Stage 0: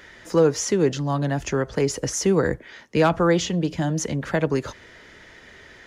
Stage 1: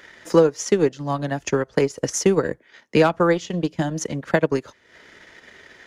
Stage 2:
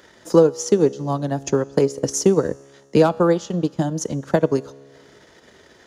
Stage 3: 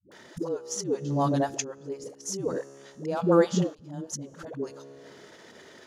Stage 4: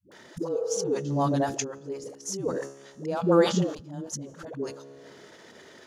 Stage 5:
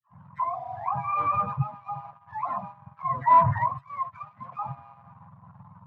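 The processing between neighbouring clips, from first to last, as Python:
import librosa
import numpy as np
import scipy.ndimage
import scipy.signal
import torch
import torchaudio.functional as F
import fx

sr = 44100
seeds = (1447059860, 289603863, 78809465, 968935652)

y1 = fx.low_shelf(x, sr, hz=110.0, db=-11.5)
y1 = fx.transient(y1, sr, attack_db=7, sustain_db=-11)
y2 = scipy.signal.sosfilt(scipy.signal.butter(2, 43.0, 'highpass', fs=sr, output='sos'), y1)
y2 = fx.peak_eq(y2, sr, hz=2100.0, db=-12.0, octaves=1.2)
y2 = fx.comb_fb(y2, sr, f0_hz=69.0, decay_s=1.8, harmonics='all', damping=0.0, mix_pct=40)
y2 = y2 * librosa.db_to_amplitude(6.5)
y3 = scipy.signal.sosfilt(scipy.signal.butter(2, 130.0, 'highpass', fs=sr, output='sos'), y2)
y3 = fx.auto_swell(y3, sr, attack_ms=452.0)
y3 = fx.dispersion(y3, sr, late='highs', ms=119.0, hz=320.0)
y4 = fx.spec_repair(y3, sr, seeds[0], start_s=0.56, length_s=0.31, low_hz=450.0, high_hz=2100.0, source='both')
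y4 = fx.sustainer(y4, sr, db_per_s=120.0)
y5 = fx.octave_mirror(y4, sr, pivot_hz=580.0)
y5 = fx.leveller(y5, sr, passes=2)
y5 = fx.double_bandpass(y5, sr, hz=380.0, octaves=2.9)
y5 = y5 * librosa.db_to_amplitude(6.5)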